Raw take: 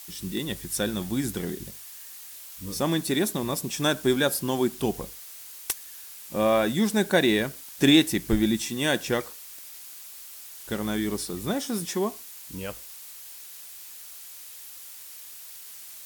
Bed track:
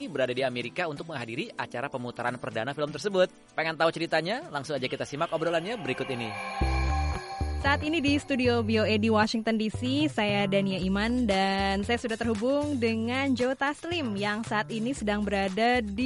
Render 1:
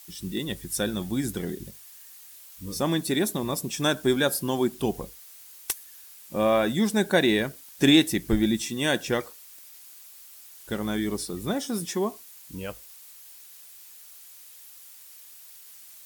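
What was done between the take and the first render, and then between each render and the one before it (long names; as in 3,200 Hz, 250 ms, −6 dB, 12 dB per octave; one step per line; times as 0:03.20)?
broadband denoise 6 dB, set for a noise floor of −44 dBFS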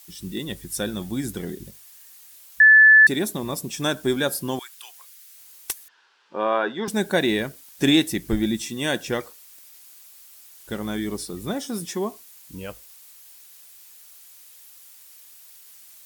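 0:02.60–0:03.07: beep over 1,740 Hz −8 dBFS
0:04.59–0:05.37: high-pass filter 1,300 Hz 24 dB per octave
0:05.88–0:06.88: loudspeaker in its box 360–4,000 Hz, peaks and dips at 410 Hz +6 dB, 590 Hz −4 dB, 940 Hz +8 dB, 1,500 Hz +8 dB, 2,200 Hz −6 dB, 3,900 Hz −4 dB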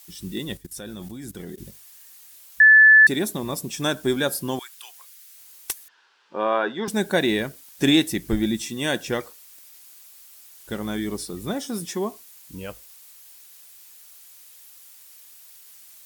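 0:00.57–0:01.58: output level in coarse steps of 18 dB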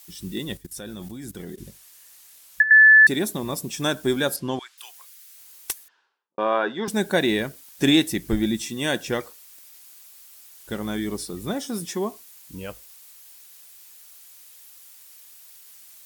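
0:01.54–0:02.71: treble cut that deepens with the level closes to 780 Hz, closed at −10.5 dBFS
0:04.36–0:04.78: low-pass filter 5,200 Hz
0:05.71–0:06.38: fade out and dull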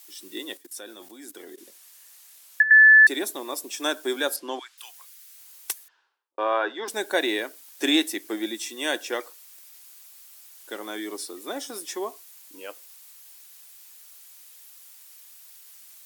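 Chebyshev high-pass filter 290 Hz, order 4
low-shelf EQ 370 Hz −7 dB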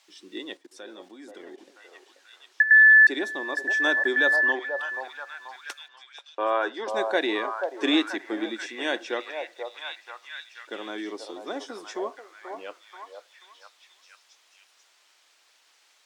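high-frequency loss of the air 140 metres
on a send: echo through a band-pass that steps 484 ms, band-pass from 690 Hz, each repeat 0.7 octaves, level −2 dB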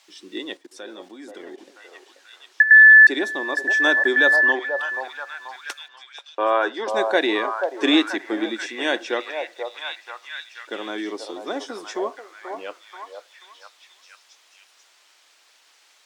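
level +5 dB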